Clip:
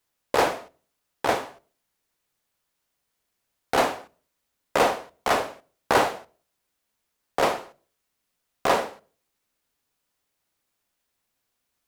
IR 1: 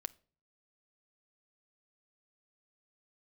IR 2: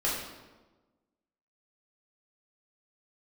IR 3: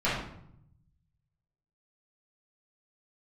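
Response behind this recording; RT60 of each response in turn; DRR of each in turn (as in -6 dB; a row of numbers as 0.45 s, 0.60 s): 1; 0.45 s, 1.2 s, 0.70 s; 15.5 dB, -6.5 dB, -11.0 dB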